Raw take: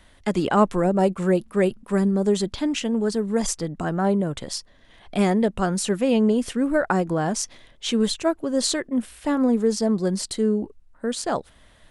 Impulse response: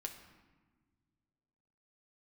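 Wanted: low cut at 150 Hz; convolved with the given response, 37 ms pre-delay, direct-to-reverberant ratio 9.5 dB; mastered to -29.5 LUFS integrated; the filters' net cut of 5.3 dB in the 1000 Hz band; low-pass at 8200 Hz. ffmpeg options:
-filter_complex "[0:a]highpass=150,lowpass=8.2k,equalizer=f=1k:t=o:g=-7.5,asplit=2[a][b];[1:a]atrim=start_sample=2205,adelay=37[c];[b][c]afir=irnorm=-1:irlink=0,volume=-7dB[d];[a][d]amix=inputs=2:normalize=0,volume=-5.5dB"

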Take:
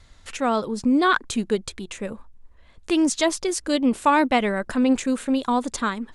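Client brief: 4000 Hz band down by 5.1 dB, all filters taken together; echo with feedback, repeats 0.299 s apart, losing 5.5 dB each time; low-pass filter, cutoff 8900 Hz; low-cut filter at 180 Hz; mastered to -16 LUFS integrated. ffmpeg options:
-af "highpass=180,lowpass=8.9k,equalizer=f=4k:t=o:g=-6.5,aecho=1:1:299|598|897|1196|1495|1794|2093:0.531|0.281|0.149|0.079|0.0419|0.0222|0.0118,volume=6dB"

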